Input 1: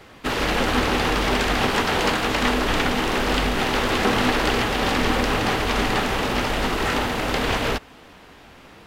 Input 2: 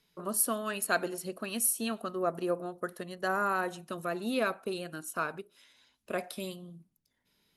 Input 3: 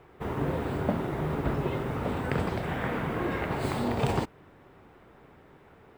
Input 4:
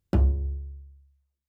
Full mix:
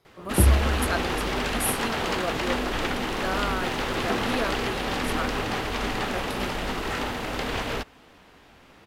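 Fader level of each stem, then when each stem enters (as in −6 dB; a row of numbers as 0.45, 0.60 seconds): −6.5, −0.5, −13.5, +3.0 decibels; 0.05, 0.00, 0.00, 0.25 seconds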